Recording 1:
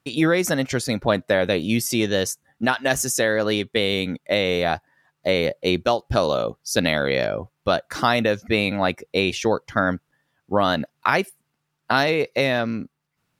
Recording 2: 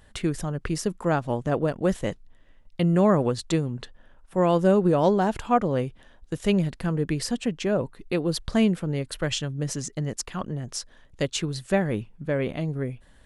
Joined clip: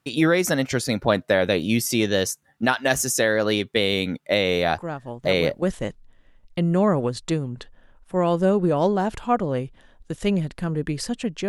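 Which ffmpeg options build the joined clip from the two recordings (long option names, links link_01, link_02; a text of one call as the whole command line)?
ffmpeg -i cue0.wav -i cue1.wav -filter_complex "[1:a]asplit=2[link_01][link_02];[0:a]apad=whole_dur=11.48,atrim=end=11.48,atrim=end=5.622[link_03];[link_02]atrim=start=1.838:end=7.7[link_04];[link_01]atrim=start=0.93:end=1.84,asetpts=PTS-STARTPTS,volume=-7.5dB,afade=type=in:duration=0.004:curve=hsin,afade=type=out:start_time=0.906:duration=0.004:curve=hsin,adelay=4710[link_05];[link_03][link_04]acrossfade=duration=0.004:curve1=hsin:curve2=hsin[link_06];[link_06][link_05]amix=inputs=2:normalize=0" out.wav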